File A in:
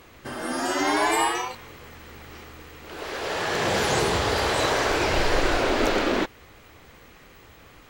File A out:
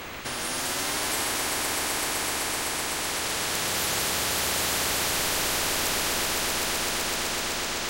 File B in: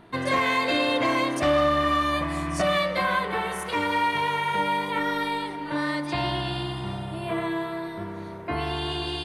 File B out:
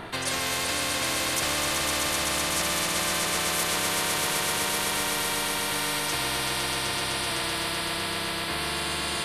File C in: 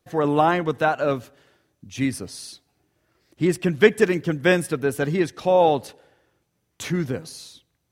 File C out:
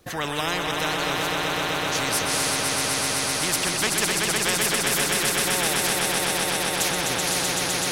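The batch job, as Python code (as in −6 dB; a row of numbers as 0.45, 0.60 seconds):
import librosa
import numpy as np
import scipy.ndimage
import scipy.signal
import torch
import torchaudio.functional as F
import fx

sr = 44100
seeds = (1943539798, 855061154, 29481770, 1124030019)

y = fx.echo_swell(x, sr, ms=127, loudest=5, wet_db=-6.5)
y = fx.spectral_comp(y, sr, ratio=4.0)
y = y * librosa.db_to_amplitude(-7.0)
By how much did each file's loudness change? −1.5, 0.0, −0.5 LU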